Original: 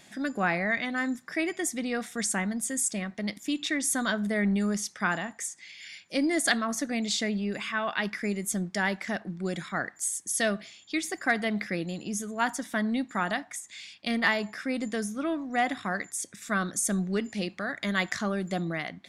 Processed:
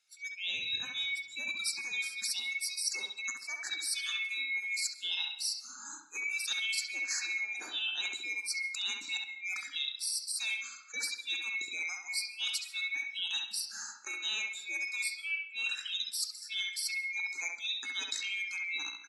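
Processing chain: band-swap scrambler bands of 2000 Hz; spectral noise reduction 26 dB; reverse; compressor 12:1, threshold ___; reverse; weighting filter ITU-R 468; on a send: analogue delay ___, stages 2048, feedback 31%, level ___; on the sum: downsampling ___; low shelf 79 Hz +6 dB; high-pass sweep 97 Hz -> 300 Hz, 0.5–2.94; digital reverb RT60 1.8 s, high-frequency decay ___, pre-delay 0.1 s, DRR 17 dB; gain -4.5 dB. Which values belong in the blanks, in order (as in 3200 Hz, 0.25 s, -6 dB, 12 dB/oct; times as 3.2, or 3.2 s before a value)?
-37 dBFS, 67 ms, -4 dB, 32000 Hz, 0.35×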